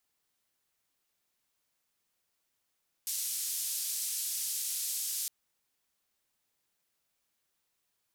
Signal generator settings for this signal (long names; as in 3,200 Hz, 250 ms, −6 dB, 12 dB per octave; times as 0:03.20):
band-limited noise 5,300–13,000 Hz, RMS −35 dBFS 2.21 s